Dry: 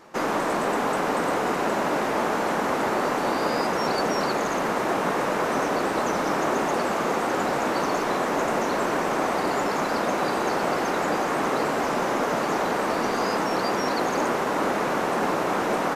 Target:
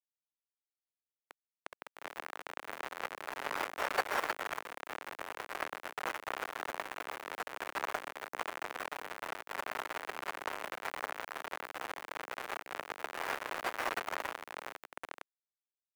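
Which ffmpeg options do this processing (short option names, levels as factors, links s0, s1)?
-filter_complex "[0:a]aderivative,asplit=2[s0][s1];[s1]asplit=3[s2][s3][s4];[s2]adelay=126,afreqshift=73,volume=0.188[s5];[s3]adelay=252,afreqshift=146,volume=0.0676[s6];[s4]adelay=378,afreqshift=219,volume=0.0245[s7];[s5][s6][s7]amix=inputs=3:normalize=0[s8];[s0][s8]amix=inputs=2:normalize=0,dynaudnorm=f=320:g=9:m=2.51,acrusher=bits=3:mix=0:aa=0.000001,acrossover=split=350 2200:gain=0.158 1 0.0631[s9][s10][s11];[s9][s10][s11]amix=inputs=3:normalize=0,volume=2.24"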